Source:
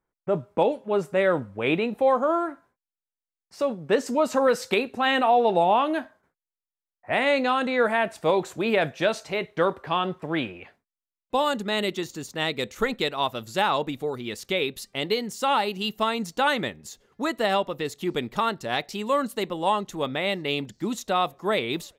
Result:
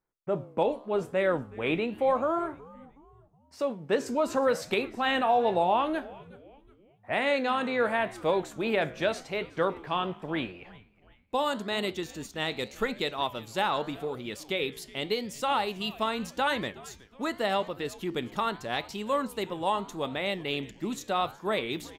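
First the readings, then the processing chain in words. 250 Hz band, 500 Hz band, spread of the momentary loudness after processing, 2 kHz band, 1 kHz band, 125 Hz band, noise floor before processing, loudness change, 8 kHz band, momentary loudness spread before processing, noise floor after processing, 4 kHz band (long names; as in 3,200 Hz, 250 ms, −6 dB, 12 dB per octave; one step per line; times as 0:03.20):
−4.5 dB, −4.5 dB, 9 LU, −4.5 dB, −4.5 dB, −4.5 dB, below −85 dBFS, −4.5 dB, −4.5 dB, 8 LU, −60 dBFS, −4.5 dB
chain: flanger 0.84 Hz, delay 9 ms, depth 9.4 ms, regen −86%
echo with shifted repeats 369 ms, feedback 43%, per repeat −140 Hz, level −21 dB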